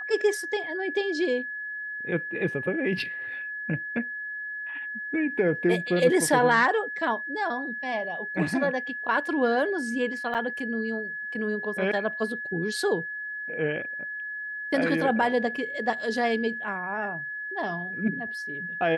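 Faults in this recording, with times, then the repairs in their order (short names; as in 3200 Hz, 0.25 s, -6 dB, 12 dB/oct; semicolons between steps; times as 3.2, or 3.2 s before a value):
tone 1700 Hz -32 dBFS
10.34–10.35 gap 8 ms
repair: notch 1700 Hz, Q 30; interpolate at 10.34, 8 ms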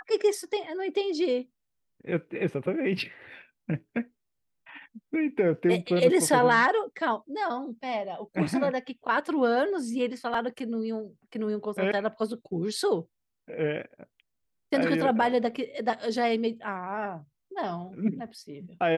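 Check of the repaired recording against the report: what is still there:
none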